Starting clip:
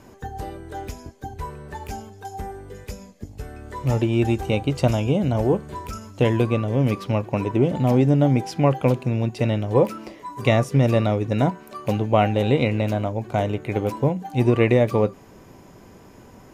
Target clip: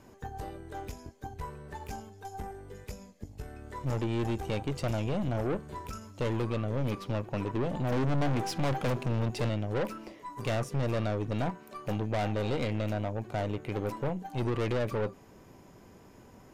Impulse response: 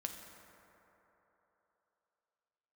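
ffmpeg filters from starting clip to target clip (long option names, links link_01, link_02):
-filter_complex "[0:a]asettb=1/sr,asplit=3[link_01][link_02][link_03];[link_01]atrim=end=7.924[link_04];[link_02]atrim=start=7.92:end=9.49,asetpts=PTS-STARTPTS,afade=type=in:duration=0.004:curve=qsin,afade=type=out:start_time=1.566:duration=0.004:curve=qsin,acontrast=72[link_05];[link_03]atrim=start=9.486[link_06];[link_04][link_05]acrossfade=duration=0.004:curve1=hsin:curve2=qsin[link_07];[link_07][link_06]acrossfade=duration=0.004:curve1=qsin:curve2=hsin,aeval=exprs='(tanh(12.6*val(0)+0.55)-tanh(0.55))/12.6':channel_layout=same,volume=-5dB"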